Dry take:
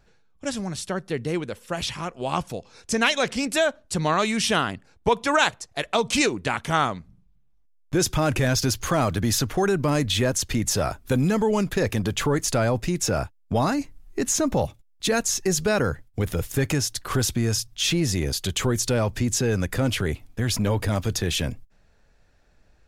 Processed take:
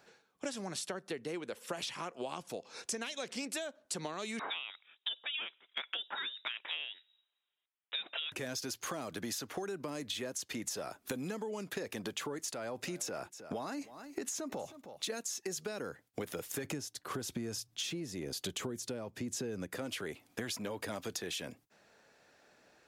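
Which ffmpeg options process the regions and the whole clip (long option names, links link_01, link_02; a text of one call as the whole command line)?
ffmpeg -i in.wav -filter_complex "[0:a]asettb=1/sr,asplit=3[link_01][link_02][link_03];[link_01]atrim=end=4.394[link_04];[link_02]atrim=start=4.39:end=8.32,asetpts=PTS-STARTPTS,afade=type=in:duration=0.004:curve=qsin,afade=type=out:start_time=3.926:duration=0.004:curve=qsin,highpass=450,lowpass=frequency=3400:width_type=q:width=0.5098,lowpass=frequency=3400:width_type=q:width=0.6013,lowpass=frequency=3400:width_type=q:width=0.9,lowpass=frequency=3400:width_type=q:width=2.563,afreqshift=-4000[link_05];[link_03]atrim=start=8.316[link_06];[link_04][link_05]acrossfade=duration=0.004:curve1=hsin:curve2=qsin[link_07];[link_07][link_06]acrossfade=duration=0.004:curve1=qsin:curve2=hsin,asettb=1/sr,asplit=3[link_08][link_09][link_10];[link_08]atrim=end=12.504[link_11];[link_09]atrim=start=12.5:end=15.1,asetpts=PTS-STARTPTS,afade=type=in:duration=0.004:curve=qsin,afade=type=out:start_time=2.596:duration=0.004:curve=qsin,acompressor=threshold=-24dB:ratio=6:attack=3.2:release=140:knee=1:detection=peak,aecho=1:1:314:0.0794,atrim=end_sample=114660[link_12];[link_10]atrim=start=15.096[link_13];[link_11][link_12]acrossfade=duration=0.004:curve1=hsin:curve2=qsin[link_14];[link_14][link_13]acrossfade=duration=0.004:curve1=qsin:curve2=hsin,asettb=1/sr,asplit=3[link_15][link_16][link_17];[link_15]atrim=end=16.644[link_18];[link_16]atrim=start=16.64:end=19.76,asetpts=PTS-STARTPTS,afade=type=in:duration=0.004:curve=qsin,afade=type=out:start_time=3.116:duration=0.004:curve=qsin,lowshelf=frequency=440:gain=11,tremolo=f=1:d=0.71[link_19];[link_17]atrim=start=19.756[link_20];[link_18][link_19]acrossfade=duration=0.004:curve1=hsin:curve2=qsin[link_21];[link_21][link_20]acrossfade=duration=0.004:curve1=qsin:curve2=hsin,acrossover=split=470|3000[link_22][link_23][link_24];[link_23]acompressor=threshold=-28dB:ratio=6[link_25];[link_22][link_25][link_24]amix=inputs=3:normalize=0,highpass=290,acompressor=threshold=-39dB:ratio=16,volume=3dB" out.wav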